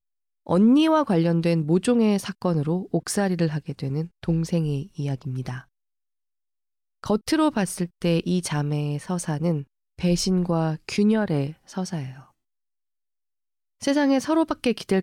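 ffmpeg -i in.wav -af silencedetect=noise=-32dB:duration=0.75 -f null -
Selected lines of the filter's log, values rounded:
silence_start: 5.60
silence_end: 7.04 | silence_duration: 1.44
silence_start: 12.11
silence_end: 13.82 | silence_duration: 1.71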